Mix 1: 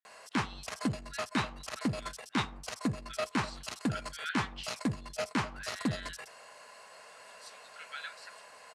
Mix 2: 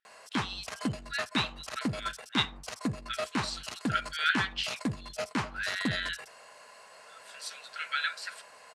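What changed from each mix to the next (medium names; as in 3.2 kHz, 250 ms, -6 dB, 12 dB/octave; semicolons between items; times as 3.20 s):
speech +11.5 dB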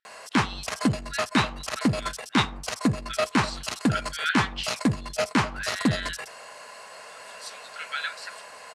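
background +9.0 dB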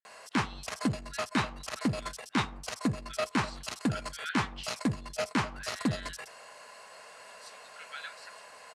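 speech -11.5 dB; background -6.5 dB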